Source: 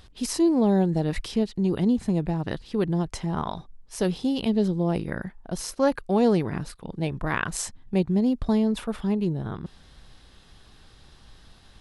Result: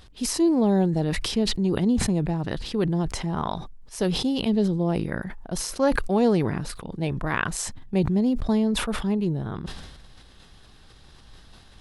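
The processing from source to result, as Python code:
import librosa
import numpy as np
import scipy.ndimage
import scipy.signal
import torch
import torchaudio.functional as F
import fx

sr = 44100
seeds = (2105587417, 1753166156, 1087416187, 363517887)

y = fx.sustainer(x, sr, db_per_s=45.0)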